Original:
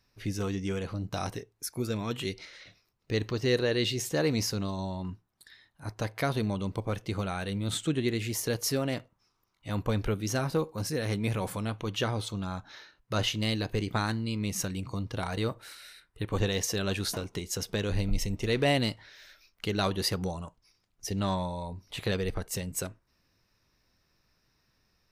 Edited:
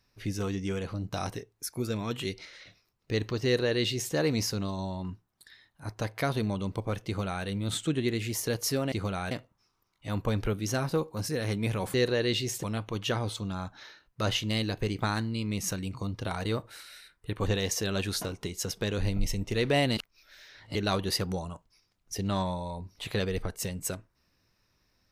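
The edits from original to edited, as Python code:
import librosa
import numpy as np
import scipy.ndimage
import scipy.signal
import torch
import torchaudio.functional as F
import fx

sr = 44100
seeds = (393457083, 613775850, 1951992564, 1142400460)

y = fx.edit(x, sr, fx.duplicate(start_s=3.45, length_s=0.69, to_s=11.55),
    fx.duplicate(start_s=7.06, length_s=0.39, to_s=8.92),
    fx.reverse_span(start_s=18.89, length_s=0.78), tone=tone)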